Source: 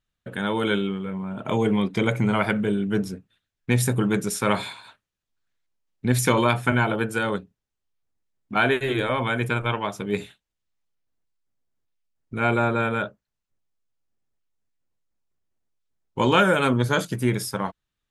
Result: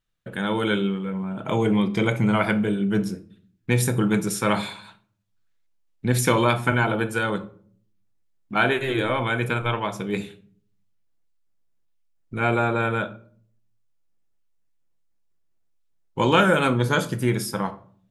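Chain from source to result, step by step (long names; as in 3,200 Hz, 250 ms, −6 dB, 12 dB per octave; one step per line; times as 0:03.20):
rectangular room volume 560 cubic metres, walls furnished, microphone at 0.71 metres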